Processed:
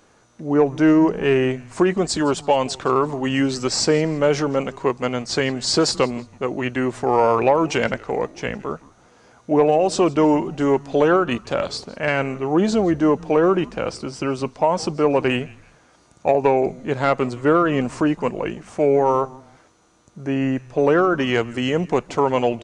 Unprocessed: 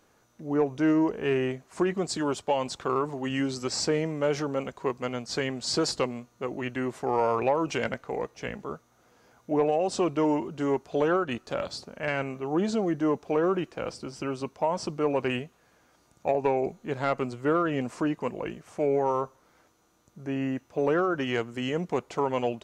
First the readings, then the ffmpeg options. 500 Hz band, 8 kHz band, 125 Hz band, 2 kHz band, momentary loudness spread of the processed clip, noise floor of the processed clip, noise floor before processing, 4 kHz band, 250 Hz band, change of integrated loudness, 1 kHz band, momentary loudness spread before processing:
+8.5 dB, +8.5 dB, +8.5 dB, +8.5 dB, 9 LU, -55 dBFS, -65 dBFS, +8.5 dB, +8.5 dB, +8.5 dB, +8.5 dB, 9 LU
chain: -filter_complex "[0:a]asplit=3[a][b][c];[b]adelay=164,afreqshift=-140,volume=-22dB[d];[c]adelay=328,afreqshift=-280,volume=-31.6dB[e];[a][d][e]amix=inputs=3:normalize=0,aresample=22050,aresample=44100,volume=8.5dB"

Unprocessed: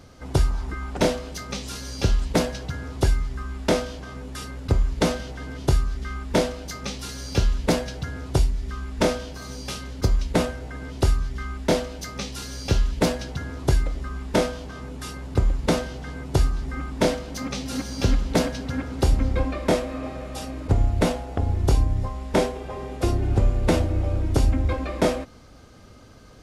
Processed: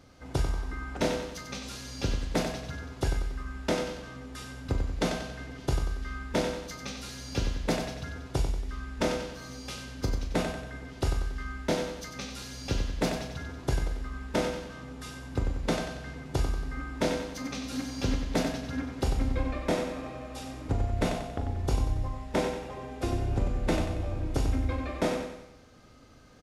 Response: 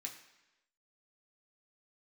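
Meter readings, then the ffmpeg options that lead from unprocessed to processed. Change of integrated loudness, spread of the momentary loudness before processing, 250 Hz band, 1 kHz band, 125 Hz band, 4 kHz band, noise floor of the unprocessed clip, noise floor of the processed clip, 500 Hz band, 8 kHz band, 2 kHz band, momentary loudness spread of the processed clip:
-7.0 dB, 11 LU, -6.0 dB, -5.5 dB, -8.0 dB, -5.5 dB, -47 dBFS, -47 dBFS, -6.5 dB, -6.5 dB, -4.5 dB, 9 LU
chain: -filter_complex "[0:a]asplit=2[a][b];[b]adelay=39,volume=-10.5dB[c];[a][c]amix=inputs=2:normalize=0,aecho=1:1:93|186|279|372|465|558:0.447|0.21|0.0987|0.0464|0.0218|0.0102,asplit=2[d][e];[1:a]atrim=start_sample=2205,lowpass=5.9k[f];[e][f]afir=irnorm=-1:irlink=0,volume=-6dB[g];[d][g]amix=inputs=2:normalize=0,volume=-8.5dB"

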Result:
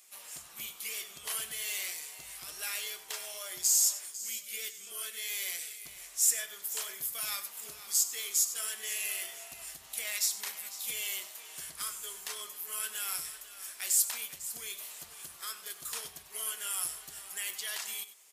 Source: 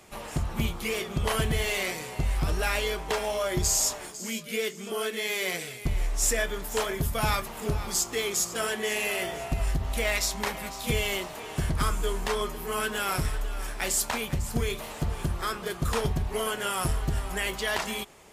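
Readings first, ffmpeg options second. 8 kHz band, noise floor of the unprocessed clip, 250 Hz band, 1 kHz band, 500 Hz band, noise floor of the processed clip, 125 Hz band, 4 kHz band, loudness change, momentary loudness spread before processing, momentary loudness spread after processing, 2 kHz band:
+0.5 dB, -41 dBFS, under -25 dB, -17.0 dB, -23.0 dB, -52 dBFS, under -35 dB, -5.5 dB, -4.0 dB, 6 LU, 16 LU, -10.5 dB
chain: -af "aderivative,bandreject=f=860:w=18,aecho=1:1:96:0.2"

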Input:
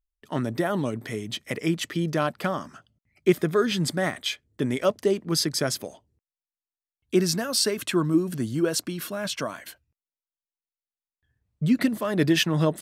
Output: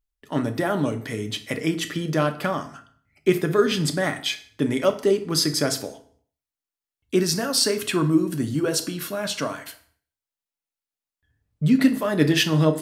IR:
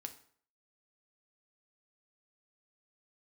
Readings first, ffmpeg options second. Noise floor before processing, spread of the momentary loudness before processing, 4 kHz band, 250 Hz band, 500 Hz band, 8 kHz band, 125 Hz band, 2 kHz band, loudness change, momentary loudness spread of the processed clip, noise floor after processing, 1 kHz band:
under -85 dBFS, 10 LU, +3.0 dB, +2.5 dB, +2.5 dB, +2.5 dB, +3.0 dB, +2.5 dB, +2.5 dB, 10 LU, under -85 dBFS, +2.5 dB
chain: -filter_complex "[1:a]atrim=start_sample=2205[a];[0:a][a]afir=irnorm=-1:irlink=0,volume=6.5dB"

